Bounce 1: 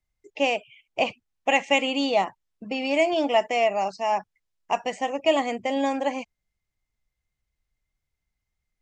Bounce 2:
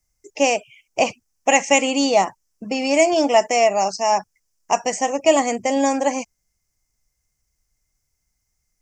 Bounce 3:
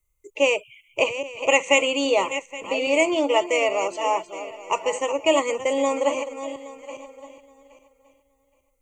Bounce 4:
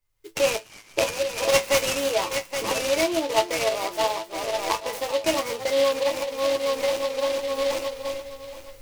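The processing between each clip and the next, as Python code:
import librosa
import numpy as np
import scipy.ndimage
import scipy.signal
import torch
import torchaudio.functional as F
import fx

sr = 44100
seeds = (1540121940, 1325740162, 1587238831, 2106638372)

y1 = fx.high_shelf_res(x, sr, hz=4600.0, db=7.5, q=3.0)
y1 = y1 * 10.0 ** (6.0 / 20.0)
y2 = fx.reverse_delay_fb(y1, sr, ms=410, feedback_pct=42, wet_db=-10.5)
y2 = fx.fixed_phaser(y2, sr, hz=1100.0, stages=8)
y2 = y2 + 10.0 ** (-23.5 / 20.0) * np.pad(y2, (int(1166 * sr / 1000.0), 0))[:len(y2)]
y2 = y2 * 10.0 ** (1.0 / 20.0)
y3 = fx.recorder_agc(y2, sr, target_db=-12.5, rise_db_per_s=34.0, max_gain_db=30)
y3 = fx.comb_fb(y3, sr, f0_hz=110.0, decay_s=0.15, harmonics='all', damping=0.0, mix_pct=100)
y3 = fx.noise_mod_delay(y3, sr, seeds[0], noise_hz=3100.0, depth_ms=0.065)
y3 = y3 * 10.0 ** (3.0 / 20.0)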